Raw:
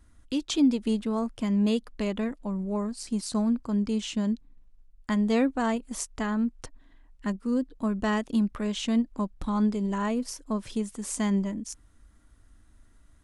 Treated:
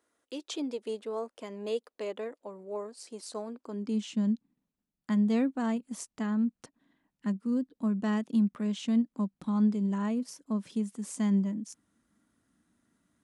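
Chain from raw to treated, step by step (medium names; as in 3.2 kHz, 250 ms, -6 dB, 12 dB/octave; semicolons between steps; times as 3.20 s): high-pass sweep 460 Hz -> 190 Hz, 3.55–4.08 s; trim -8 dB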